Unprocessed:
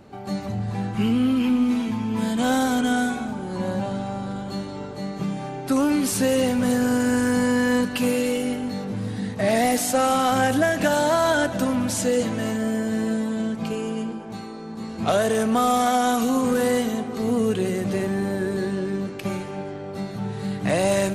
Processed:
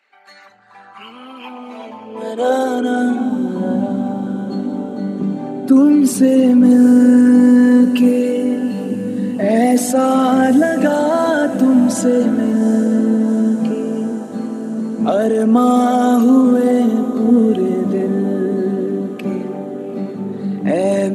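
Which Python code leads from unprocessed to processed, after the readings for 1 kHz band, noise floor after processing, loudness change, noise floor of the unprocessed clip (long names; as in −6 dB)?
+3.5 dB, −37 dBFS, +8.5 dB, −35 dBFS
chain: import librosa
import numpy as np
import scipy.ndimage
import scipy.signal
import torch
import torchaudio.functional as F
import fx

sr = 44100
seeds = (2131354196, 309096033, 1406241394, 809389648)

y = fx.envelope_sharpen(x, sr, power=1.5)
y = fx.echo_diffused(y, sr, ms=798, feedback_pct=66, wet_db=-14.0)
y = fx.filter_sweep_highpass(y, sr, from_hz=2100.0, to_hz=240.0, start_s=0.01, end_s=3.41, q=3.0)
y = y * librosa.db_to_amplitude(3.0)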